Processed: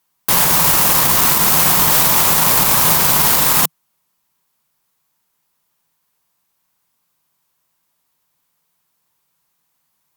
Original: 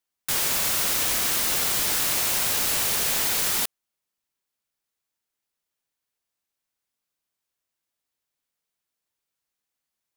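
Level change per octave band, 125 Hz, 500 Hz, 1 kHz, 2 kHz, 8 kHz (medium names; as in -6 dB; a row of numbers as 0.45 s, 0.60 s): +17.0 dB, +11.5 dB, +16.0 dB, +9.0 dB, +8.5 dB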